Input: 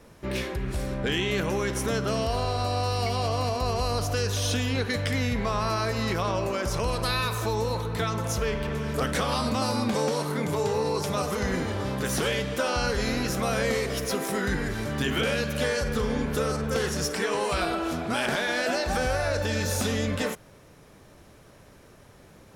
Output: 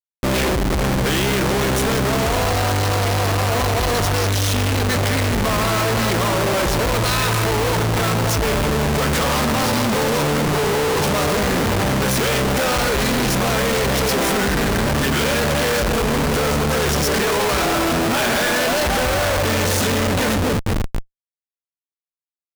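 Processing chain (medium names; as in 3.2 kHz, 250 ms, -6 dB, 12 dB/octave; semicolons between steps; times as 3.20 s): echo whose repeats swap between lows and highs 243 ms, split 1.3 kHz, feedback 51%, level -8.5 dB; Schmitt trigger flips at -38 dBFS; trim +8.5 dB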